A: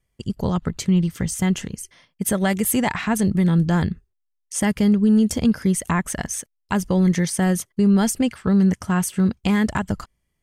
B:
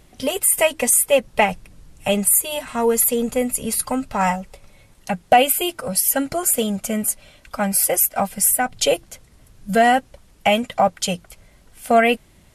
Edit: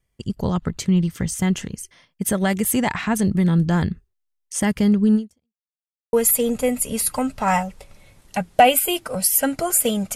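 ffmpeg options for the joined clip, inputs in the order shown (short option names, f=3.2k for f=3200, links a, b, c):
-filter_complex "[0:a]apad=whole_dur=10.15,atrim=end=10.15,asplit=2[a][b];[a]atrim=end=5.66,asetpts=PTS-STARTPTS,afade=t=out:st=5.15:d=0.51:c=exp[c];[b]atrim=start=5.66:end=6.13,asetpts=PTS-STARTPTS,volume=0[d];[1:a]atrim=start=2.86:end=6.88,asetpts=PTS-STARTPTS,afade=t=in:d=0.004:c=hsin[e];[c][d][e]concat=n=3:v=0:a=1"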